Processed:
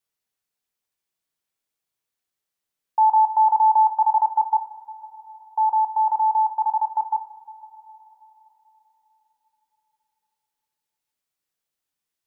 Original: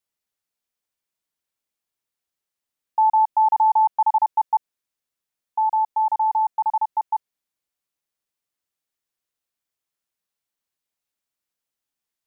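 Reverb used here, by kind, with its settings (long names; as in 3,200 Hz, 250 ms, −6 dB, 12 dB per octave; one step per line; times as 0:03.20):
coupled-rooms reverb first 0.31 s, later 4 s, from −18 dB, DRR 6.5 dB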